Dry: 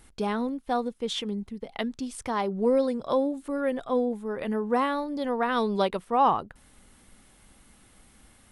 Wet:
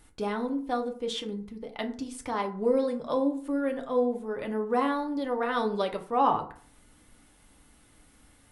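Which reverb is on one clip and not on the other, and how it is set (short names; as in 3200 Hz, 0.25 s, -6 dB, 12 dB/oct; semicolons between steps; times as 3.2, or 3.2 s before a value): FDN reverb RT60 0.49 s, low-frequency decay 1×, high-frequency decay 0.5×, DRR 4 dB; gain -3.5 dB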